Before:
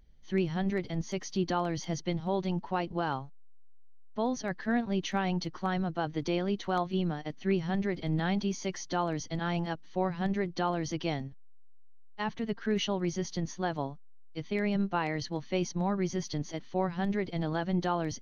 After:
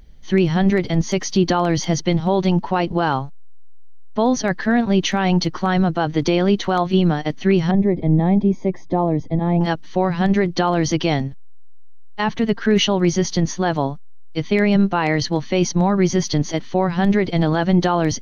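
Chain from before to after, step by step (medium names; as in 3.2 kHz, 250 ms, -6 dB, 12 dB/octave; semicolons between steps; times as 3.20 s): 7.71–9.61 s: boxcar filter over 30 samples; loudness maximiser +21 dB; trim -6 dB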